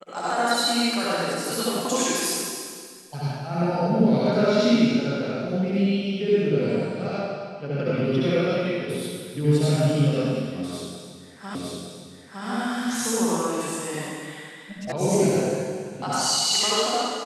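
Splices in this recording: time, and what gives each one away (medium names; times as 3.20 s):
11.55 s: repeat of the last 0.91 s
14.92 s: sound stops dead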